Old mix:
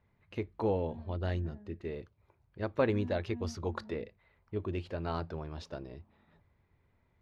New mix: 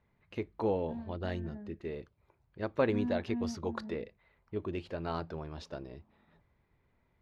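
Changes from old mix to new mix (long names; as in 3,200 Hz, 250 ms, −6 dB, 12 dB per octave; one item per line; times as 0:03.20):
first voice: add parametric band 92 Hz −6.5 dB 0.46 octaves
second voice +8.0 dB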